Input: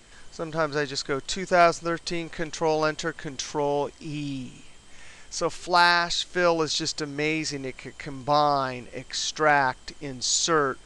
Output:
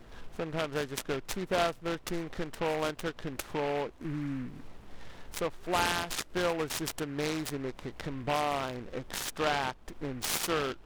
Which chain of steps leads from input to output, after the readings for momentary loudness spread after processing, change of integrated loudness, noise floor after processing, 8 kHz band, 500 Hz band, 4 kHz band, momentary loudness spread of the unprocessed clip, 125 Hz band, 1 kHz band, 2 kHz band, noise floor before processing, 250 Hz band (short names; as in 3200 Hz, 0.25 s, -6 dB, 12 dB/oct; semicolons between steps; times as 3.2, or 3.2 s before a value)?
11 LU, -8.5 dB, -52 dBFS, -8.5 dB, -7.5 dB, -8.5 dB, 16 LU, -4.0 dB, -9.5 dB, -9.5 dB, -49 dBFS, -4.5 dB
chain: Wiener smoothing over 15 samples; compressor 2:1, threshold -41 dBFS, peak gain reduction 15 dB; noise-modulated delay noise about 1500 Hz, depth 0.083 ms; gain +4 dB